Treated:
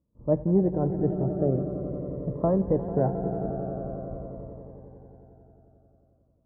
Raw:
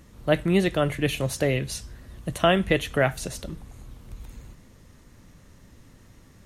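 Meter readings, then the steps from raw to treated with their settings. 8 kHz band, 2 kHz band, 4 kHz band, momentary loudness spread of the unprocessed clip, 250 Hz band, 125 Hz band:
under -40 dB, under -25 dB, under -40 dB, 21 LU, +0.5 dB, +0.5 dB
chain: high-pass 57 Hz 6 dB/octave; gate -48 dBFS, range -23 dB; inverse Chebyshev low-pass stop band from 2.3 kHz, stop band 50 dB; on a send: echo with a slow build-up 89 ms, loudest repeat 5, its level -14.5 dB; on the sum: Shepard-style phaser falling 0.46 Hz

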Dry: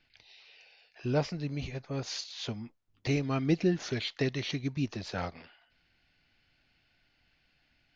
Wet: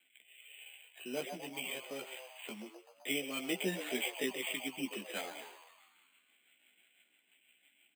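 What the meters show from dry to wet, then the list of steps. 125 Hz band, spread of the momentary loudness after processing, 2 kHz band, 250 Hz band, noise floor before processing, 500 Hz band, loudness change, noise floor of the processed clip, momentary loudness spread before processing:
-21.0 dB, 16 LU, +0.5 dB, -9.5 dB, -72 dBFS, -6.5 dB, -6.0 dB, -73 dBFS, 11 LU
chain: high-order bell 3.5 kHz +14.5 dB; rotary cabinet horn 1 Hz, later 6 Hz, at 4.34 s; steep high-pass 180 Hz 48 dB/octave; on a send: frequency-shifting echo 128 ms, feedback 63%, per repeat +120 Hz, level -11 dB; on the sum: chorus voices 2, 0.37 Hz, delay 15 ms, depth 1.2 ms; tone controls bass -8 dB, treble -9 dB; careless resampling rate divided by 8×, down filtered, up hold

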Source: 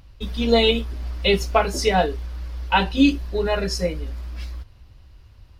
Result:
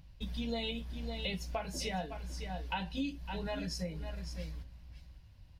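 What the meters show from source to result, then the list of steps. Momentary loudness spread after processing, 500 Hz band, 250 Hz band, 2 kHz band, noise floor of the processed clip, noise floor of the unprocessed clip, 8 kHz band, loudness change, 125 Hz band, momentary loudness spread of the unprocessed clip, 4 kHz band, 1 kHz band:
15 LU, -20.5 dB, -16.5 dB, -17.5 dB, -57 dBFS, -49 dBFS, -12.5 dB, -18.0 dB, -13.0 dB, 16 LU, -16.0 dB, -18.5 dB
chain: graphic EQ with 31 bands 160 Hz +11 dB, 400 Hz -11 dB, 1.25 kHz -9 dB; on a send: delay 556 ms -13 dB; on the sum: compression 4:1, threshold -26 dBFS, peak gain reduction 12.5 dB; trim -9 dB

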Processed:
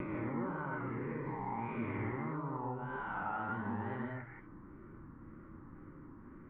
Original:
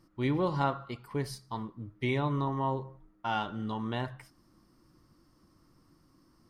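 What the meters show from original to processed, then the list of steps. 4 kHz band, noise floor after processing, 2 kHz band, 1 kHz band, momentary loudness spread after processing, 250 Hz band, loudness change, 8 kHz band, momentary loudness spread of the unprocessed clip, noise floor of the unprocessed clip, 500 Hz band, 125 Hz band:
under -20 dB, -54 dBFS, -2.0 dB, -5.5 dB, 15 LU, -5.0 dB, -6.0 dB, no reading, 11 LU, -66 dBFS, -7.5 dB, -7.5 dB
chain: reverse spectral sustain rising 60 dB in 2.25 s; steep low-pass 2 kHz 36 dB/octave; peaking EQ 680 Hz -10.5 dB 0.44 oct; peak limiter -26 dBFS, peak gain reduction 9 dB; compression 3:1, threshold -49 dBFS, peak gain reduction 14 dB; wow and flutter 140 cents; gated-style reverb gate 200 ms rising, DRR -1 dB; trim +5 dB

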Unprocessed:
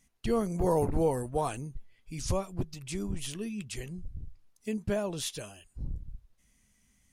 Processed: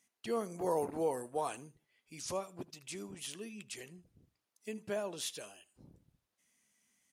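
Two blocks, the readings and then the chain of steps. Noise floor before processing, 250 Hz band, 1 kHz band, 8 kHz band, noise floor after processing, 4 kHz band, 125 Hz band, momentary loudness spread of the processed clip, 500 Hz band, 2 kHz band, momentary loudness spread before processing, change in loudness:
-69 dBFS, -10.5 dB, -4.5 dB, -4.0 dB, under -85 dBFS, -4.0 dB, -17.0 dB, 16 LU, -5.5 dB, -4.0 dB, 17 LU, -6.0 dB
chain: Bessel high-pass 360 Hz, order 2; on a send: feedback delay 78 ms, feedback 26%, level -21 dB; on the sum: trim -4 dB

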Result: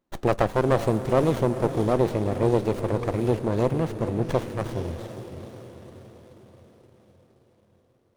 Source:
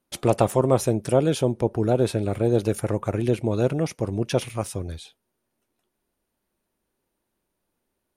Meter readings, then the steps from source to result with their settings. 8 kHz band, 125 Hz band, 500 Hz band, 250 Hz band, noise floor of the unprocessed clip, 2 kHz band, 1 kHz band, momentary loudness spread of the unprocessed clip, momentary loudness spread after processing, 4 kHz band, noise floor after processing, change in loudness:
-10.5 dB, -1.5 dB, -1.0 dB, -1.0 dB, -79 dBFS, +2.0 dB, +1.5 dB, 9 LU, 16 LU, -5.0 dB, -64 dBFS, -1.0 dB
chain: echo that smears into a reverb 473 ms, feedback 56%, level -11 dB; sliding maximum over 17 samples

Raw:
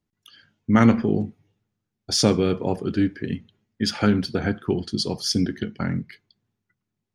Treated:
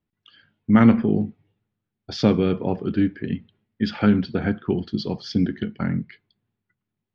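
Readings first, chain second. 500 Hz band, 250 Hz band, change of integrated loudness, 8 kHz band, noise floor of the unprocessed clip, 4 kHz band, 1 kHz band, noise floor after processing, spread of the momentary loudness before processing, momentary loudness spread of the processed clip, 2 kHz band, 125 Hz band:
-0.5 dB, +2.0 dB, +1.0 dB, under -15 dB, -82 dBFS, -8.0 dB, -1.0 dB, -83 dBFS, 13 LU, 14 LU, -1.0 dB, +1.0 dB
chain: low-pass 3.8 kHz 24 dB/octave; dynamic bell 200 Hz, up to +4 dB, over -31 dBFS, Q 1.6; trim -1 dB

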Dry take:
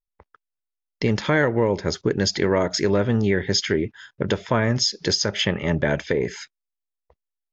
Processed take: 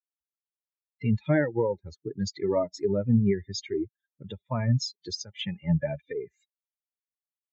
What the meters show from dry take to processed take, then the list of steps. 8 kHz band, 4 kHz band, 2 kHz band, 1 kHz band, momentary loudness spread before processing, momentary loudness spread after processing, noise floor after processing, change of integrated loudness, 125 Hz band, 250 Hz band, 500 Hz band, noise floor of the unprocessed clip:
no reading, -13.5 dB, -13.5 dB, -10.5 dB, 6 LU, 13 LU, under -85 dBFS, -6.5 dB, -3.0 dB, -4.5 dB, -7.0 dB, -85 dBFS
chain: expander on every frequency bin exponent 3; dynamic bell 570 Hz, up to +3 dB, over -41 dBFS, Q 3.5; harmonic-percussive split percussive -8 dB; high-pass 70 Hz; peaking EQ 150 Hz +5.5 dB 1.4 oct

